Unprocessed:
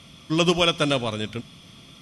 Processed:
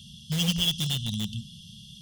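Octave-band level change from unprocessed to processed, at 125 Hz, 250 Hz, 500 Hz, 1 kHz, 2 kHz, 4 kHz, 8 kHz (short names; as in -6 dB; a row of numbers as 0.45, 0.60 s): 0.0, -6.0, -23.0, -20.5, -11.0, -1.5, +1.0 dB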